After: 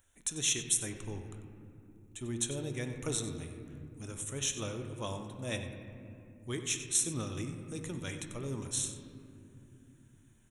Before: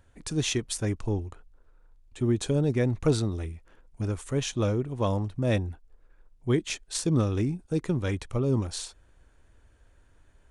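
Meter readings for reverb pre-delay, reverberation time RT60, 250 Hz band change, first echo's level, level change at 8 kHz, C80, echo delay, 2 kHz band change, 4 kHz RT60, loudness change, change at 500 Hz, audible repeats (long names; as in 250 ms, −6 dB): 3 ms, 2.9 s, −12.0 dB, −13.5 dB, +4.5 dB, 7.5 dB, 94 ms, −4.5 dB, 1.4 s, −6.5 dB, −12.0 dB, 1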